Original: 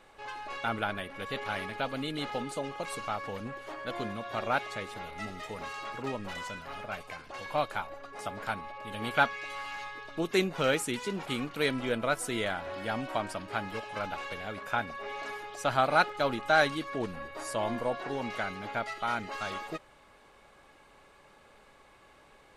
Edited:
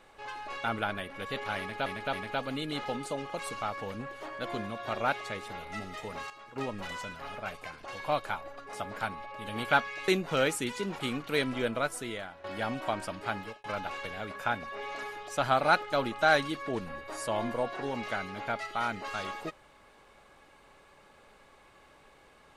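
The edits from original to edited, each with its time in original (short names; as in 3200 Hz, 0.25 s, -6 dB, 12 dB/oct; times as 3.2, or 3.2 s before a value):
1.59–1.86 loop, 3 plays
5.76–6.02 gain -11 dB
9.54–10.35 cut
11.94–12.71 fade out, to -15.5 dB
13.64–13.91 fade out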